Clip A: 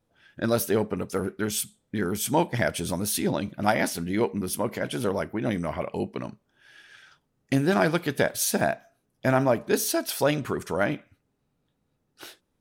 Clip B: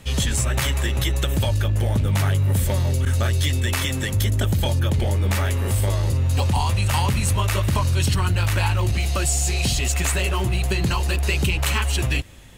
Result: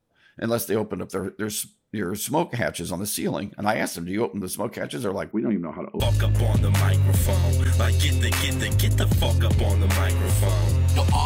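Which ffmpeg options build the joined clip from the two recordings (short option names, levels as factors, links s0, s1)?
-filter_complex "[0:a]asettb=1/sr,asplit=3[s0][s1][s2];[s0]atrim=end=5.314[s3];[s1]atrim=start=5.31:end=6,asetpts=PTS-STARTPTS,afade=t=in:d=0.004:c=qsin,afade=t=out:st=0.686:d=0.004:c=qsin,highpass=140,equalizer=f=150:t=q:w=4:g=-5,equalizer=f=210:t=q:w=4:g=9,equalizer=f=360:t=q:w=4:g=8,equalizer=f=510:t=q:w=4:g=-8,equalizer=f=750:t=q:w=4:g=-8,equalizer=f=1700:t=q:w=4:g=-9,lowpass=f=2100:w=0.5412,lowpass=f=2100:w=1.3066[s4];[s2]atrim=start=5.996[s5];[s3][s4]acrossfade=d=0.004:c1=hsin:c2=qsin[s6];[s6][s5]acrossfade=d=0.004:c1=qsin:c2=hsin,apad=whole_dur=11.25,atrim=end=11.25,atrim=end=6.002[s7];[1:a]atrim=start=1.408:end=6.66[s8];[s7][s8]acrossfade=d=0.004:c1=hsin:c2=hsin"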